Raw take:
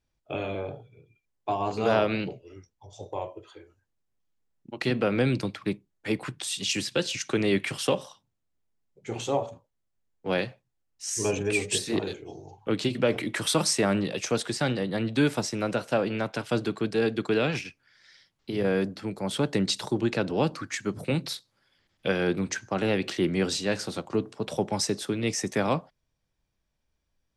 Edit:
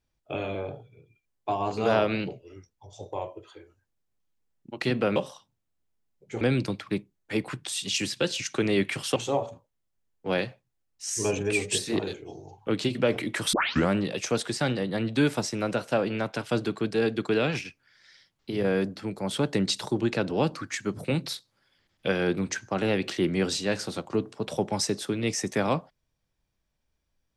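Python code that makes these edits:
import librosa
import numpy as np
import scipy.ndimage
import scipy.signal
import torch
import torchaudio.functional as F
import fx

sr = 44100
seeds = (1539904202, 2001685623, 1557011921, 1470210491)

y = fx.edit(x, sr, fx.move(start_s=7.91, length_s=1.25, to_s=5.16),
    fx.tape_start(start_s=13.53, length_s=0.37), tone=tone)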